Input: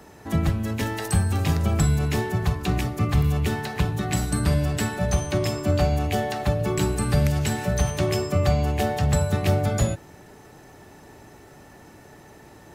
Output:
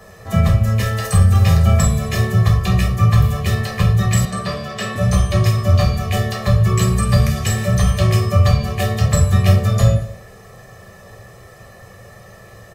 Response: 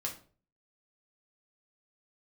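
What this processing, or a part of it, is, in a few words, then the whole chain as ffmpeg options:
microphone above a desk: -filter_complex "[0:a]aecho=1:1:1.7:0.87[s0];[1:a]atrim=start_sample=2205[s1];[s0][s1]afir=irnorm=-1:irlink=0,asettb=1/sr,asplit=3[s2][s3][s4];[s2]atrim=end=4.254[s5];[s3]atrim=start=4.25:end=4.96,asetpts=PTS-STARTPTS,afade=t=in:d=0.004:c=qsin,afade=t=out:st=0.706:d=0.004:c=qsin,acrossover=split=190 5500:gain=0.0891 1 0.224[s6][s7][s8];[s6][s7][s8]amix=inputs=3:normalize=0[s9];[s4]atrim=start=4.956[s10];[s5][s9]acrossfade=d=0.004:c1=hsin:c2=qsin[s11];[s11][s10]acrossfade=d=0.004:c1=qsin:c2=hsin,aecho=1:1:222:0.0668,volume=1.5"

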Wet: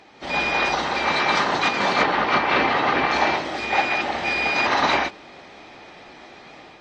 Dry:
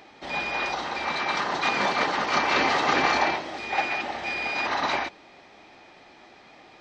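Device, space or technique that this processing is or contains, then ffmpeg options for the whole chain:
low-bitrate web radio: -filter_complex "[0:a]asettb=1/sr,asplit=3[s0][s1][s2];[s0]atrim=end=2.024[s3];[s1]atrim=start=2.02:end=3.12,asetpts=PTS-STARTPTS,afade=t=in:d=0.004:c=qsin,afade=t=out:st=1.096:d=0.004:c=qsin,lowpass=3300[s4];[s2]atrim=start=3.116[s5];[s3][s4]acrossfade=d=0.004:c1=hsin:c2=qsin[s6];[s6][s5]acrossfade=d=0.004:c1=qsin:c2=hsin,dynaudnorm=f=100:g=5:m=2.11,alimiter=limit=0.398:level=0:latency=1:release=360" -ar 32000 -c:a aac -b:a 32k

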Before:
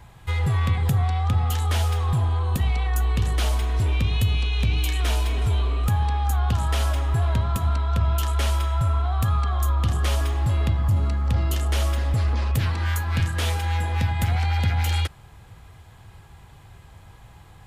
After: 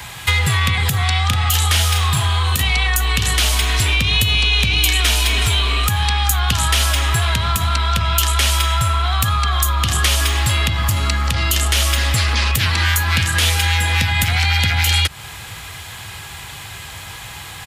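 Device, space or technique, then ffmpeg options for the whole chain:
mastering chain: -filter_complex "[0:a]asplit=3[s0][s1][s2];[s0]afade=t=out:st=1.3:d=0.02[s3];[s1]asplit=2[s4][s5];[s5]adelay=35,volume=0.531[s6];[s4][s6]amix=inputs=2:normalize=0,afade=t=in:st=1.3:d=0.02,afade=t=out:st=2.62:d=0.02[s7];[s2]afade=t=in:st=2.62:d=0.02[s8];[s3][s7][s8]amix=inputs=3:normalize=0,highpass=58,equalizer=f=2400:t=o:w=1.7:g=3,acrossover=split=290|1100[s9][s10][s11];[s9]acompressor=threshold=0.0708:ratio=4[s12];[s10]acompressor=threshold=0.00708:ratio=4[s13];[s11]acompressor=threshold=0.0141:ratio=4[s14];[s12][s13][s14]amix=inputs=3:normalize=0,acompressor=threshold=0.0447:ratio=2,tiltshelf=f=1400:g=-8.5,alimiter=level_in=8.91:limit=0.891:release=50:level=0:latency=1,volume=0.891"

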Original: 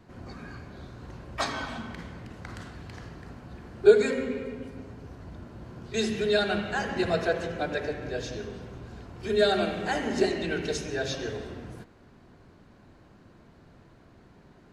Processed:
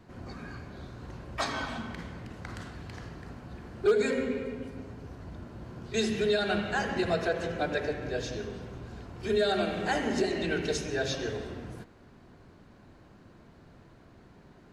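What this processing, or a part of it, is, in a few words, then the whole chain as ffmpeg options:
clipper into limiter: -af "asoftclip=type=hard:threshold=0.266,alimiter=limit=0.133:level=0:latency=1:release=153"

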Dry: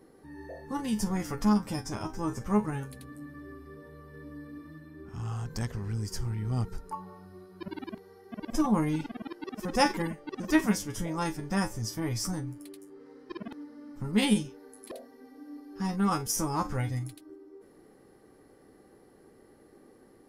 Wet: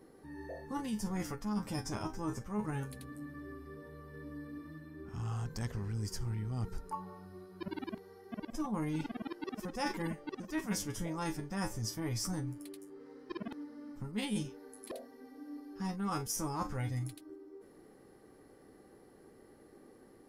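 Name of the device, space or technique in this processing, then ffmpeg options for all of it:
compression on the reversed sound: -af "areverse,acompressor=threshold=0.0282:ratio=8,areverse,volume=0.841"

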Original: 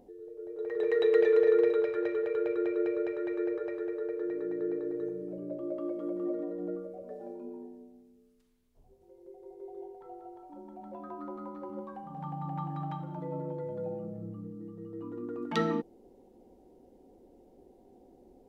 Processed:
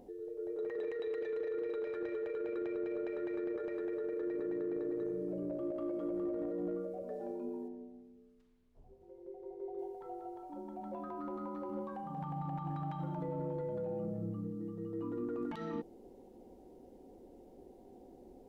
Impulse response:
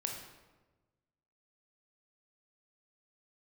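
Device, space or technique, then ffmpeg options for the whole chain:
de-esser from a sidechain: -filter_complex "[0:a]asplit=2[s0][s1];[s1]highpass=f=4100:p=1,apad=whole_len=814978[s2];[s0][s2]sidechaincompress=threshold=0.00178:ratio=12:attack=1.3:release=30,asettb=1/sr,asplit=3[s3][s4][s5];[s3]atrim=end=7.684[s6];[s4]atrim=start=7.68:end=9.79,asetpts=PTS-STARTPTS,afade=t=in:d=0.004:c=qsin,afade=t=out:st=2.106:d=0.004:c=qsin,aemphasis=mode=reproduction:type=75kf[s7];[s5]atrim=start=9.786[s8];[s6][s7]acrossfade=d=0.004:c1=hsin:c2=qsin[s9];[s9][s8]acrossfade=d=0.004:c1=qsin:c2=hsin,volume=1.26"

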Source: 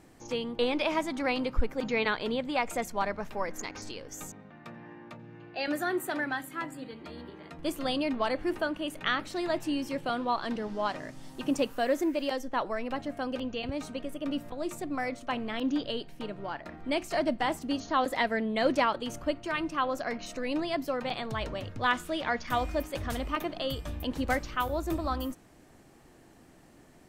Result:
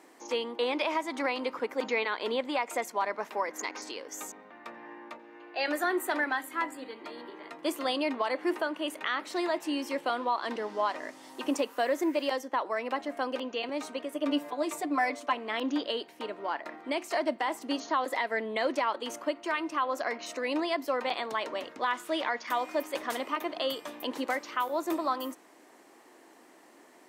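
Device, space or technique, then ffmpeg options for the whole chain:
laptop speaker: -filter_complex "[0:a]asettb=1/sr,asplit=3[s0][s1][s2];[s0]atrim=end=5.184[s3];[s1]atrim=start=5.18:end=5.84,asetpts=PTS-STARTPTS,afade=t=in:d=0.004:c=qsin,afade=t=out:st=0.656:d=0.004:c=qsin,highpass=260[s4];[s2]atrim=start=5.836[s5];[s3][s4]acrossfade=d=0.004:c1=hsin:c2=qsin[s6];[s6][s5]acrossfade=d=0.004:c1=qsin:c2=hsin,highpass=f=290:w=0.5412,highpass=f=290:w=1.3066,equalizer=f=1000:t=o:w=0.38:g=6,equalizer=f=2000:t=o:w=0.22:g=4.5,alimiter=limit=0.0944:level=0:latency=1:release=211,asettb=1/sr,asplit=3[s7][s8][s9];[s7]atrim=end=14.144[s10];[s8]atrim=start=14.14:end=15.33,asetpts=PTS-STARTPTS,afade=t=in:d=0.004:c=qsin,afade=t=out:st=1.186:d=0.004:c=qsin,aecho=1:1:6.8:0.81,atrim=end_sample=52479[s11];[s9]atrim=start=15.326[s12];[s10][s11]acrossfade=d=0.004:c1=hsin:c2=qsin[s13];[s13][s12]acrossfade=d=0.004:c1=qsin:c2=hsin,volume=1.26"

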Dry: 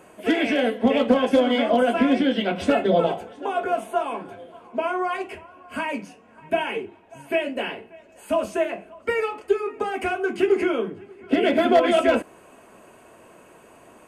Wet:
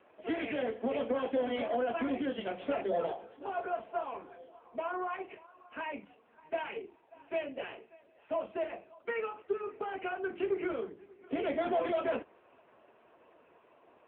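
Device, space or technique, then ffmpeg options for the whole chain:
telephone: -filter_complex "[0:a]asettb=1/sr,asplit=3[s0][s1][s2];[s0]atrim=end=7.614[s3];[s1]atrim=start=7.61:end=8.84,asetpts=PTS-STARTPTS,afade=t=in:d=0.004:c=qsin,afade=t=out:st=1.226:d=0.004:c=qsin,highpass=99[s4];[s2]atrim=start=8.836[s5];[s3][s4]acrossfade=d=0.004:c1=hsin:c2=qsin[s6];[s6][s5]acrossfade=d=0.004:c1=qsin:c2=hsin,highpass=300,lowpass=3300,asoftclip=type=tanh:threshold=0.2,volume=0.355" -ar 8000 -c:a libopencore_amrnb -b:a 6700

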